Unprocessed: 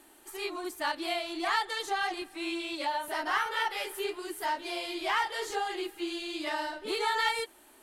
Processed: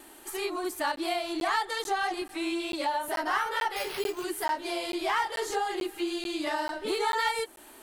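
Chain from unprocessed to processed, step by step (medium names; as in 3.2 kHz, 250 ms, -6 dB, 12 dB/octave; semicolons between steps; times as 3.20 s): dynamic bell 2.9 kHz, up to -5 dB, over -45 dBFS, Q 0.77; in parallel at +2 dB: compression, threshold -38 dBFS, peak gain reduction 12 dB; on the sum: wow and flutter 20 cents; 3.76–4.24 s: careless resampling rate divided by 6×, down none, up hold; crackling interface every 0.44 s, samples 512, zero, from 0.96 s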